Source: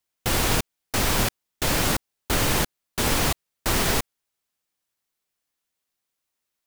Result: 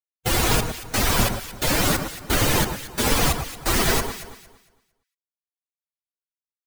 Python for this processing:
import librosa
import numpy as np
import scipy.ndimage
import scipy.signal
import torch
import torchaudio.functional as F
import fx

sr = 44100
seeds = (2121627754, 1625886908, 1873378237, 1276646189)

y = fx.bin_expand(x, sr, power=2.0)
y = fx.echo_alternate(y, sr, ms=114, hz=1600.0, feedback_pct=51, wet_db=-6.5)
y = F.gain(torch.from_numpy(y), 6.5).numpy()